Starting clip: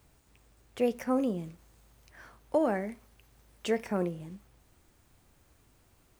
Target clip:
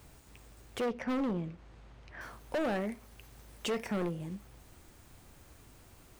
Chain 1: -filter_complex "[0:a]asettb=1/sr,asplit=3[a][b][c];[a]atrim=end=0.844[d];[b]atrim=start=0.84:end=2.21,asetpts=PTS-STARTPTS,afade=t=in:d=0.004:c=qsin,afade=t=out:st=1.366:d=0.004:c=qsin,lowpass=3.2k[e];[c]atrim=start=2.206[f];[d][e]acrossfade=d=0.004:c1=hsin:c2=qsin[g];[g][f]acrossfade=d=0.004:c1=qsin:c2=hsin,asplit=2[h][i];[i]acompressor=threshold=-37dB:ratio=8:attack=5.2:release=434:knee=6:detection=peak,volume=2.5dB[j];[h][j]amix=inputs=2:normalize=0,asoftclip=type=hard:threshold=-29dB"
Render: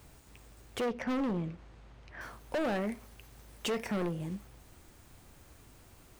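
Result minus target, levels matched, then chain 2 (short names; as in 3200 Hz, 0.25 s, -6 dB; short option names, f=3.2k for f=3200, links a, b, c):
compressor: peak gain reduction -8 dB
-filter_complex "[0:a]asettb=1/sr,asplit=3[a][b][c];[a]atrim=end=0.844[d];[b]atrim=start=0.84:end=2.21,asetpts=PTS-STARTPTS,afade=t=in:d=0.004:c=qsin,afade=t=out:st=1.366:d=0.004:c=qsin,lowpass=3.2k[e];[c]atrim=start=2.206[f];[d][e]acrossfade=d=0.004:c1=hsin:c2=qsin[g];[g][f]acrossfade=d=0.004:c1=qsin:c2=hsin,asplit=2[h][i];[i]acompressor=threshold=-46dB:ratio=8:attack=5.2:release=434:knee=6:detection=peak,volume=2.5dB[j];[h][j]amix=inputs=2:normalize=0,asoftclip=type=hard:threshold=-29dB"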